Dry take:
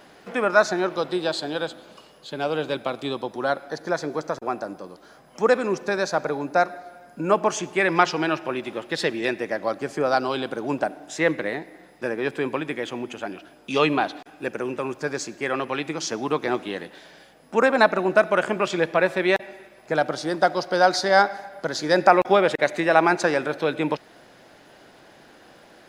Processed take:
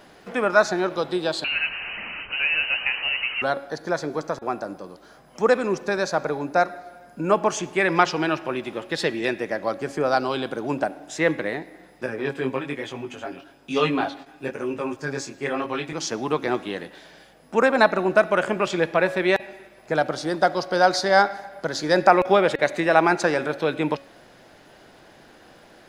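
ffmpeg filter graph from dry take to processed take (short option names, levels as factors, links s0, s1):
-filter_complex "[0:a]asettb=1/sr,asplit=3[s0][s1][s2];[s0]atrim=end=1.444[s3];[s1]atrim=start=1.44:end=3.42,asetpts=PTS-STARTPTS,afade=t=in:d=0.004:c=qsin,afade=t=out:st=1.976:d=0.004:c=qsin,aeval=exprs='val(0)+0.5*0.0447*sgn(val(0))':c=same,lowpass=f=2600:t=q:w=0.5098,lowpass=f=2600:t=q:w=0.6013,lowpass=f=2600:t=q:w=0.9,lowpass=f=2600:t=q:w=2.563,afreqshift=-3100[s4];[s2]atrim=start=3.416[s5];[s3][s4]acrossfade=d=0.004:c1=hsin:c2=qsin[s6];[s6][s5]acrossfade=d=0.004:c1=qsin:c2=hsin,asettb=1/sr,asplit=3[s7][s8][s9];[s7]atrim=end=12.064[s10];[s8]atrim=start=12.06:end=15.93,asetpts=PTS-STARTPTS,afade=t=in:d=0.004:c=qsin,afade=t=out:st=3.866:d=0.004:c=qsin,flanger=delay=18:depth=5.1:speed=1.1,aecho=1:1:7.4:0.58,atrim=end_sample=170667[s11];[s9]atrim=start=15.926[s12];[s10][s11]acrossfade=d=0.004:c1=hsin:c2=qsin[s13];[s13][s12]acrossfade=d=0.004:c1=qsin:c2=hsin,lowshelf=f=81:g=7.5,bandreject=f=277.7:t=h:w=4,bandreject=f=555.4:t=h:w=4,bandreject=f=833.1:t=h:w=4,bandreject=f=1110.8:t=h:w=4,bandreject=f=1388.5:t=h:w=4,bandreject=f=1666.2:t=h:w=4,bandreject=f=1943.9:t=h:w=4,bandreject=f=2221.6:t=h:w=4,bandreject=f=2499.3:t=h:w=4,bandreject=f=2777:t=h:w=4,bandreject=f=3054.7:t=h:w=4,bandreject=f=3332.4:t=h:w=4,bandreject=f=3610.1:t=h:w=4,bandreject=f=3887.8:t=h:w=4,bandreject=f=4165.5:t=h:w=4,bandreject=f=4443.2:t=h:w=4"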